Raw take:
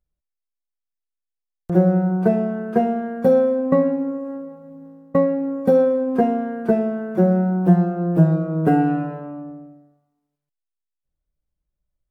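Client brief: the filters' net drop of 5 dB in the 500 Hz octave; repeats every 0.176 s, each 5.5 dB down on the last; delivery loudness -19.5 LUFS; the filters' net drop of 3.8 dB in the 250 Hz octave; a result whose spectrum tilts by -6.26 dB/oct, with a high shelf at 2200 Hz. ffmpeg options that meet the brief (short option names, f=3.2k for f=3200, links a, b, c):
-af "equalizer=f=250:t=o:g=-4.5,equalizer=f=500:t=o:g=-5,highshelf=f=2.2k:g=4,aecho=1:1:176|352|528|704|880|1056|1232:0.531|0.281|0.149|0.079|0.0419|0.0222|0.0118,volume=3dB"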